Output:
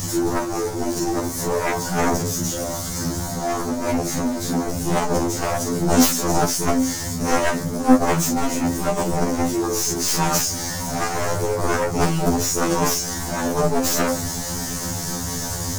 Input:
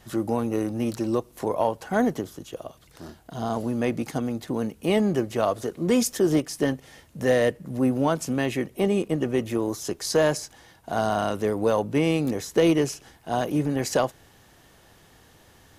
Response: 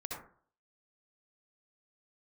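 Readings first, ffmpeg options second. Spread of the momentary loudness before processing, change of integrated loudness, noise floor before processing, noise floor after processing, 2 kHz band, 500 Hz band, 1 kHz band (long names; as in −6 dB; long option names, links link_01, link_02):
11 LU, +3.5 dB, −55 dBFS, −28 dBFS, +5.5 dB, +1.0 dB, +7.0 dB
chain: -filter_complex "[0:a]aeval=exprs='val(0)+0.5*0.0447*sgn(val(0))':channel_layout=same,highshelf=frequency=4200:width_type=q:width=3:gain=13.5,acompressor=mode=upward:threshold=-19dB:ratio=2.5,bass=frequency=250:gain=8,treble=frequency=4000:gain=-9[link_01];[1:a]atrim=start_sample=2205,asetrate=79380,aresample=44100[link_02];[link_01][link_02]afir=irnorm=-1:irlink=0,aeval=exprs='0.422*(cos(1*acos(clip(val(0)/0.422,-1,1)))-cos(1*PI/2))+0.00266*(cos(2*acos(clip(val(0)/0.422,-1,1)))-cos(2*PI/2))+0.0237*(cos(5*acos(clip(val(0)/0.422,-1,1)))-cos(5*PI/2))+0.211*(cos(7*acos(clip(val(0)/0.422,-1,1)))-cos(7*PI/2))+0.0237*(cos(8*acos(clip(val(0)/0.422,-1,1)))-cos(8*PI/2))':channel_layout=same,afftfilt=real='re*2*eq(mod(b,4),0)':imag='im*2*eq(mod(b,4),0)':win_size=2048:overlap=0.75,volume=3dB"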